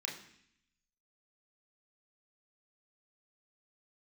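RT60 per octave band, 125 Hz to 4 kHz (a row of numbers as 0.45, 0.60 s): 1.0, 0.90, 0.65, 0.65, 0.85, 0.80 s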